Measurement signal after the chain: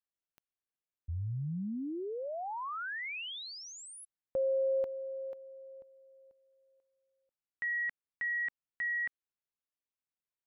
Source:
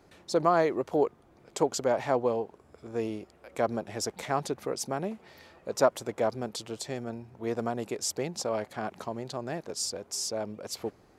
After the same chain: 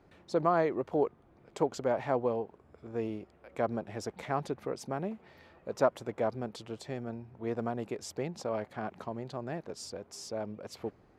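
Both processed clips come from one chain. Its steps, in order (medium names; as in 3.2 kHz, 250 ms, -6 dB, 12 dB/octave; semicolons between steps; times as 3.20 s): tone controls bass +3 dB, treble -11 dB; trim -3.5 dB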